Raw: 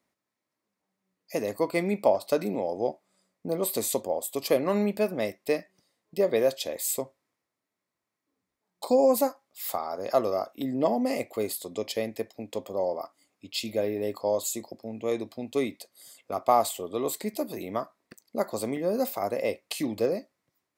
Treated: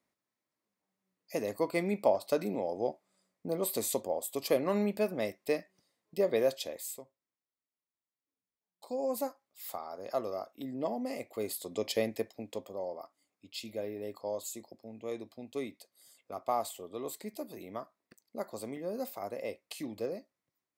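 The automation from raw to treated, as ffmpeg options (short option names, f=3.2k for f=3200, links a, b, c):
-af "volume=12dB,afade=t=out:st=6.55:d=0.45:silence=0.237137,afade=t=in:st=8.85:d=0.4:silence=0.421697,afade=t=in:st=11.23:d=0.78:silence=0.354813,afade=t=out:st=12.01:d=0.78:silence=0.334965"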